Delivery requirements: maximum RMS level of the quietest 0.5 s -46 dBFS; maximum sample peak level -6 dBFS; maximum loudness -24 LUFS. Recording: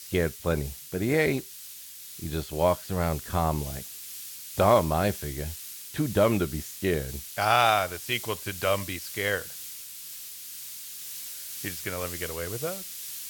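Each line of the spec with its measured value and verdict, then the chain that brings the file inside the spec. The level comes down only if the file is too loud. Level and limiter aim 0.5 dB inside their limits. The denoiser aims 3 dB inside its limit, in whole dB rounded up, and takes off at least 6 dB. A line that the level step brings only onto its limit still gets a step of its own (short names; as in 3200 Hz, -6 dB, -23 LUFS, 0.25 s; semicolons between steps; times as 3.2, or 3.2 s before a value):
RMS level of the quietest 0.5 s -44 dBFS: fail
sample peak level -7.5 dBFS: OK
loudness -28.5 LUFS: OK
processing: denoiser 6 dB, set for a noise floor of -44 dBFS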